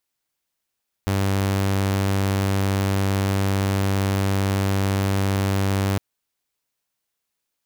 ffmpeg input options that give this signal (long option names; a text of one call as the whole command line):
ffmpeg -f lavfi -i "aevalsrc='0.15*(2*mod(97.7*t,1)-1)':duration=4.91:sample_rate=44100" out.wav